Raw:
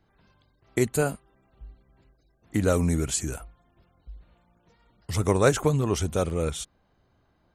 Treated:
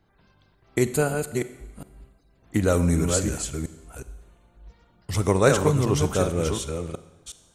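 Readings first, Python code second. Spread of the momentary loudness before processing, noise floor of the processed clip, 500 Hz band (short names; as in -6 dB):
14 LU, -62 dBFS, +3.0 dB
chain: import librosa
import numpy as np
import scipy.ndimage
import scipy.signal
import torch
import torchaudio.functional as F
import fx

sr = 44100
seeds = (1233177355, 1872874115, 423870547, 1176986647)

y = fx.reverse_delay(x, sr, ms=366, wet_db=-5.0)
y = fx.rev_schroeder(y, sr, rt60_s=1.1, comb_ms=31, drr_db=13.0)
y = y * 10.0 ** (1.5 / 20.0)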